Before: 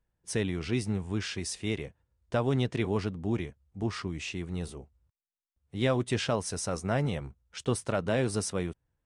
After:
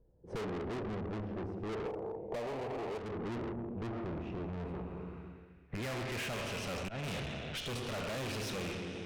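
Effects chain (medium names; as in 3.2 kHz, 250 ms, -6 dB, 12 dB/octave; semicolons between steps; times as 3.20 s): rattle on loud lows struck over -35 dBFS, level -31 dBFS; Schroeder reverb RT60 1.6 s, combs from 26 ms, DRR 6 dB; 5.78–7.04 s: slow attack 395 ms; low-pass sweep 480 Hz -> 3.6 kHz, 3.52–7.05 s; valve stage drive 42 dB, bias 0.6; 1.86–2.98 s: peaking EQ 690 Hz +14 dB 1.7 oct; hard clipper -32.5 dBFS, distortion -17 dB; compression 6:1, threshold -53 dBFS, peak gain reduction 17 dB; trim +14.5 dB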